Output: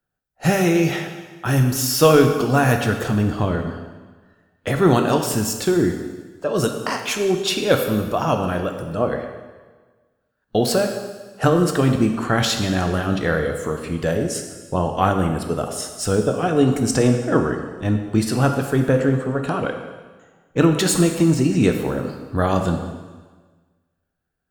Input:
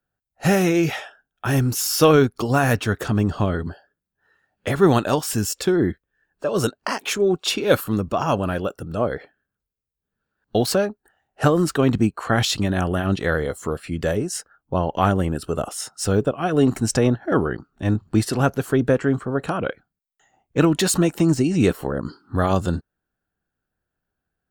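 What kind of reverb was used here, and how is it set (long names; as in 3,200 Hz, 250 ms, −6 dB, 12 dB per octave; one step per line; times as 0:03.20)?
dense smooth reverb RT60 1.4 s, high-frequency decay 0.95×, DRR 4 dB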